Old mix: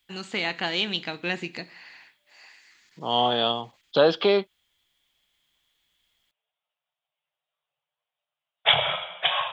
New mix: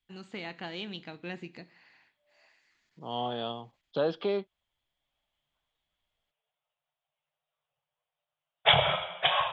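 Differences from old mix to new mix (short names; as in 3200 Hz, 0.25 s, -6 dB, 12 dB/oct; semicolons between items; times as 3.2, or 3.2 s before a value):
first voice -11.5 dB; second voice -11.5 dB; master: add tilt -2 dB/oct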